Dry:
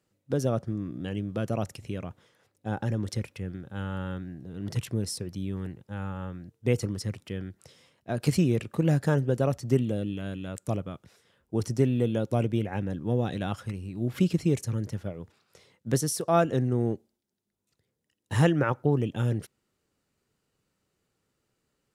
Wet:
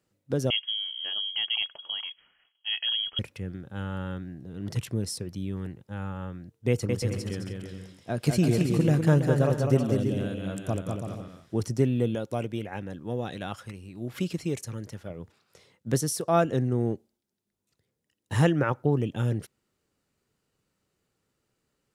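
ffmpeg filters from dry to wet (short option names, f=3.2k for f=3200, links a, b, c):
-filter_complex "[0:a]asettb=1/sr,asplit=3[a][b][c];[a]atrim=end=0.504[d];[b]atrim=start=0.5:end=3.19,asetpts=PTS-STARTPTS,afade=t=in:d=0.004:c=qsin,afade=t=out:st=2.686:d=0.004:c=qsin,lowpass=f=2.9k:t=q:w=0.5098,lowpass=f=2.9k:t=q:w=0.6013,lowpass=f=2.9k:t=q:w=0.9,lowpass=f=2.9k:t=q:w=2.563,afreqshift=-3400[e];[c]atrim=start=3.186[f];[d][e]acrossfade=d=0.004:c1=hsin:c2=qsin[g];[g][f]acrossfade=d=0.004:c1=qsin:c2=hsin,asettb=1/sr,asplit=3[h][i][j];[h]atrim=end=6.694[k];[i]atrim=start=6.69:end=11.62,asetpts=PTS-STARTPTS,afade=t=in:d=0.004:c=qsin,afade=t=out:st=4.926:d=0.004:c=qsin,aecho=1:1:200|330|414.5|469.4|505.1:0.631|0.398|0.251|0.158|0.1,atrim=end_sample=217413[l];[j]atrim=start=11.616[m];[k][l]acrossfade=d=0.004:c1=hsin:c2=qsin[n];[n][m]acrossfade=d=0.004:c1=qsin:c2=hsin,asettb=1/sr,asplit=3[o][p][q];[o]atrim=end=12.154[r];[p]atrim=start=12.15:end=15.1,asetpts=PTS-STARTPTS,afade=t=in:d=0.004:c=qsin,afade=t=out:st=2.946:d=0.004:c=qsin,lowshelf=f=370:g=-8[s];[q]atrim=start=15.096[t];[r][s]acrossfade=d=0.004:c1=hsin:c2=qsin[u];[u][t]acrossfade=d=0.004:c1=qsin:c2=hsin"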